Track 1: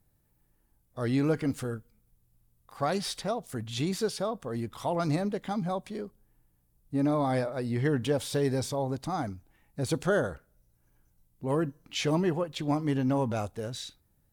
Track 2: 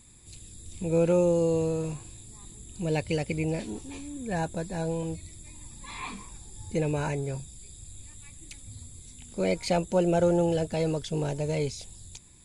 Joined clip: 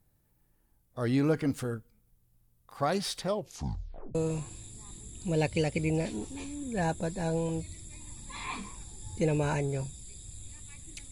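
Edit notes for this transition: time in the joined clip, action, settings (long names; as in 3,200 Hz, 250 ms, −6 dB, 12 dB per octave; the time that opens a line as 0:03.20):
track 1
0:03.24: tape stop 0.91 s
0:04.15: continue with track 2 from 0:01.69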